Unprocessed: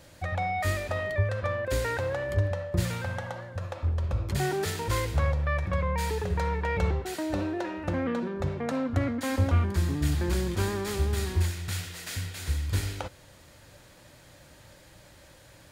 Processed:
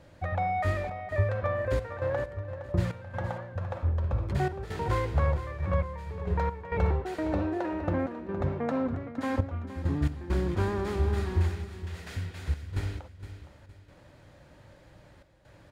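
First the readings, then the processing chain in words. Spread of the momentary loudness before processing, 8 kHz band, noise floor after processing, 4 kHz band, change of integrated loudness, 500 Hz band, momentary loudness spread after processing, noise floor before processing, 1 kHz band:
7 LU, -15.0 dB, -55 dBFS, -9.5 dB, -1.5 dB, -0.5 dB, 9 LU, -54 dBFS, 0.0 dB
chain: trance gate "xxxx.xxx.x..x.xx" 67 bpm -12 dB; low-pass 1.4 kHz 6 dB/octave; on a send: feedback delay 464 ms, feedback 35%, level -11.5 dB; on the sum: dynamic bell 960 Hz, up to +3 dB, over -42 dBFS, Q 0.74

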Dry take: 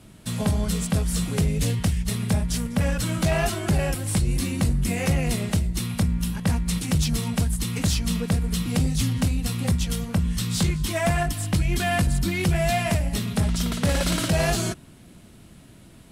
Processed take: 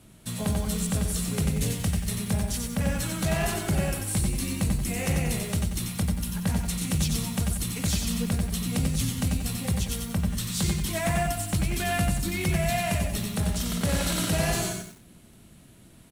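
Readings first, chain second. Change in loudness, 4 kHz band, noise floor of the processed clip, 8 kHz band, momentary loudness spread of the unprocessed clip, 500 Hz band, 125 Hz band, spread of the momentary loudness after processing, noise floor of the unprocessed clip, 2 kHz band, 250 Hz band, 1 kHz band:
-3.0 dB, -2.5 dB, -52 dBFS, 0.0 dB, 3 LU, -4.0 dB, -4.0 dB, 3 LU, -48 dBFS, -3.0 dB, -3.0 dB, -3.0 dB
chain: treble shelf 8.6 kHz +7 dB; band-stop 5 kHz, Q 22; on a send: multi-tap echo 95/100 ms -16.5/-9 dB; on the sum: bit-crushed delay 90 ms, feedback 35%, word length 7-bit, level -5 dB; trim -5 dB

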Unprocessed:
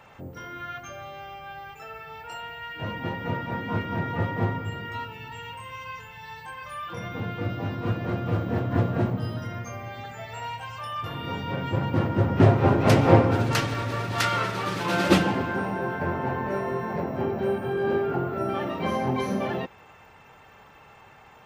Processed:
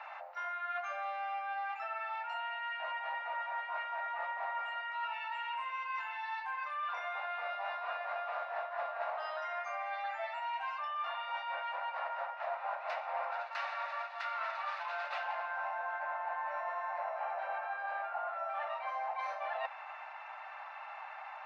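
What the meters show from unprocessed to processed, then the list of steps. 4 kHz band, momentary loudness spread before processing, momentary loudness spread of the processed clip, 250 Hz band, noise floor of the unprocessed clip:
-12.5 dB, 18 LU, 2 LU, under -40 dB, -52 dBFS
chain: steep high-pass 630 Hz 72 dB/octave; band-stop 3.2 kHz, Q 8.5; reverse; compression 16:1, threshold -41 dBFS, peak gain reduction 23 dB; reverse; distance through air 310 m; trim +8 dB

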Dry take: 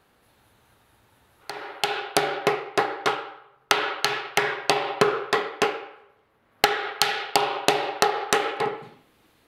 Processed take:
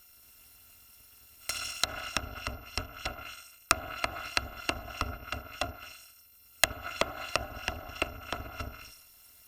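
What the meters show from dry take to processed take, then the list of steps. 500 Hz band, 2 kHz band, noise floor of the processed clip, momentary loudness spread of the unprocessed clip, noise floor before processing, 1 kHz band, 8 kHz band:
-15.0 dB, -9.0 dB, -58 dBFS, 11 LU, -63 dBFS, -13.0 dB, -4.0 dB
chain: bit-reversed sample order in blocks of 256 samples; low-pass that closes with the level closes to 680 Hz, closed at -21 dBFS; whistle 14 kHz -62 dBFS; trim +4 dB

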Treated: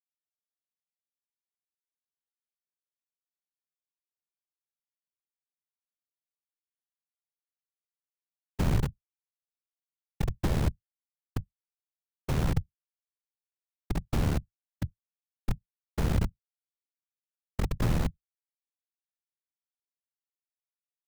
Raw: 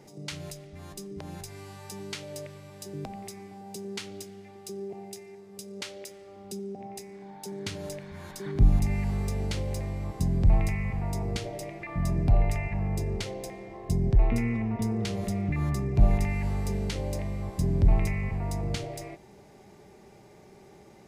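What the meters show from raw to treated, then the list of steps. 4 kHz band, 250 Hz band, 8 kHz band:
-7.0 dB, -6.5 dB, -8.5 dB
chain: reverse echo 75 ms -20 dB; Schmitt trigger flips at -19.5 dBFS; whisper effect; trim +4 dB

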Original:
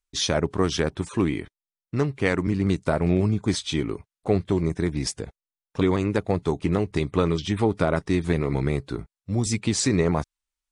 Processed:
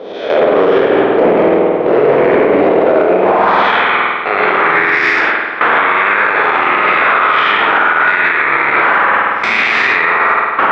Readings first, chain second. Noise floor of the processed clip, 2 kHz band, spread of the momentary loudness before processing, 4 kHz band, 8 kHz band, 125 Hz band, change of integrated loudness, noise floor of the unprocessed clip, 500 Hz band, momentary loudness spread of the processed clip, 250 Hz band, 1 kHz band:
-18 dBFS, +25.0 dB, 8 LU, +9.5 dB, under -10 dB, -7.0 dB, +14.5 dB, under -85 dBFS, +14.5 dB, 2 LU, +5.0 dB, +23.5 dB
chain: spectral blur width 243 ms; wind noise 310 Hz -26 dBFS; bass shelf 92 Hz +4 dB; level rider gain up to 14 dB; gate with hold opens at -13 dBFS; high-pass sweep 480 Hz -> 1.4 kHz, 3.03–3.69 s; compression 4:1, threshold -35 dBFS, peak gain reduction 18.5 dB; bass shelf 200 Hz -4.5 dB; short-mantissa float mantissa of 2-bit; low-pass 2.8 kHz 24 dB/octave; spring tank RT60 1.5 s, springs 49 ms, chirp 40 ms, DRR -1 dB; loudness maximiser +30 dB; trim -1 dB

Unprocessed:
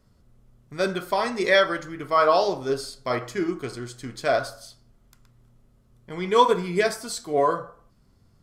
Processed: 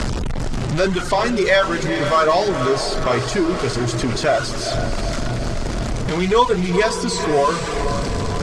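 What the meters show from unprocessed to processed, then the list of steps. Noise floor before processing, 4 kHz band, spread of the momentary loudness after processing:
-60 dBFS, +7.5 dB, 8 LU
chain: jump at every zero crossing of -23 dBFS; reverb removal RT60 0.75 s; low-pass 8 kHz 24 dB/octave; bass shelf 110 Hz +8 dB; echo that smears into a reverb 454 ms, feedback 58%, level -10 dB; three bands compressed up and down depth 40%; trim +3 dB

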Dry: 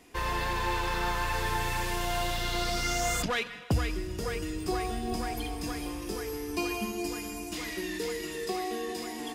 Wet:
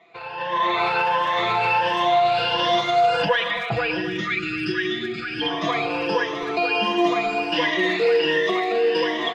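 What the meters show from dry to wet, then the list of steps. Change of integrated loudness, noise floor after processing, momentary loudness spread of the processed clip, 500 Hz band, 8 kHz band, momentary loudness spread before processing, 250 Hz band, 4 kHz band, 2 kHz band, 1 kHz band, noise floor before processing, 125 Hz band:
+10.5 dB, -31 dBFS, 6 LU, +13.5 dB, no reading, 6 LU, +7.5 dB, +11.0 dB, +11.5 dB, +12.5 dB, -39 dBFS, -0.5 dB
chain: drifting ripple filter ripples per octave 1.2, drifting +1.4 Hz, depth 14 dB; resonant low shelf 430 Hz -9 dB, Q 1.5; compression, threshold -28 dBFS, peak gain reduction 6.5 dB; low-pass 3.4 kHz 24 dB/octave; peak limiter -29 dBFS, peak gain reduction 10.5 dB; time-frequency box 4.01–5.42 s, 400–1200 Hz -27 dB; peaking EQ 1.6 kHz -2 dB 0.99 oct; level rider gain up to 14.5 dB; high-pass 110 Hz 24 dB/octave; comb 6 ms, depth 96%; speakerphone echo 260 ms, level -11 dB

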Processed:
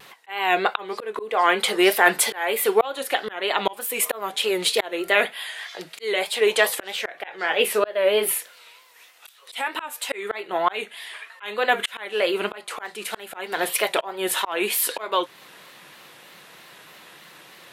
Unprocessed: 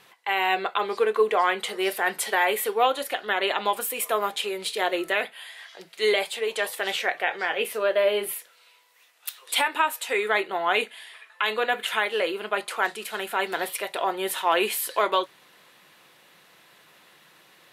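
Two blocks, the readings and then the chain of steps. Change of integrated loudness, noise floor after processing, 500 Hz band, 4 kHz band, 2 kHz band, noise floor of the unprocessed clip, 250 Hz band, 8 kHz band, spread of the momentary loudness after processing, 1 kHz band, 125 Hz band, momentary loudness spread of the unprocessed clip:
+2.0 dB, -50 dBFS, +2.0 dB, +3.0 dB, +1.5 dB, -57 dBFS, +5.0 dB, +6.0 dB, 13 LU, 0.0 dB, no reading, 8 LU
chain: vibrato 3.2 Hz 84 cents; slow attack 452 ms; trim +8.5 dB

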